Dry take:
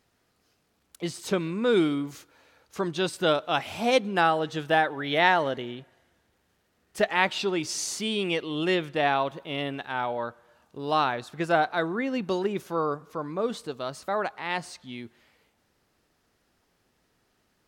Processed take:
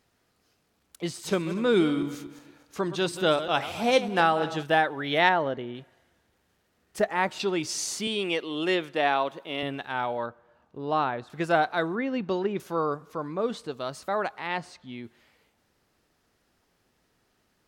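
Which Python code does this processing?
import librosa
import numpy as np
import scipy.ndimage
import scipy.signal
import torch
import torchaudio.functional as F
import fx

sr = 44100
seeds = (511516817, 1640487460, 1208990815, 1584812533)

y = fx.reverse_delay_fb(x, sr, ms=121, feedback_pct=51, wet_db=-12, at=(1.06, 4.63))
y = fx.lowpass(y, sr, hz=1500.0, slope=6, at=(5.29, 5.75))
y = fx.peak_eq(y, sr, hz=3200.0, db=-11.5, octaves=1.2, at=(6.99, 7.4))
y = fx.highpass(y, sr, hz=230.0, slope=12, at=(8.07, 9.63))
y = fx.lowpass(y, sr, hz=1400.0, slope=6, at=(10.26, 11.3))
y = fx.air_absorb(y, sr, metres=140.0, at=(11.95, 12.6))
y = fx.high_shelf(y, sr, hz=10000.0, db=-11.0, at=(13.28, 13.73))
y = fx.high_shelf(y, sr, hz=fx.line((14.46, 6000.0), (15.03, 4100.0)), db=-12.0, at=(14.46, 15.03), fade=0.02)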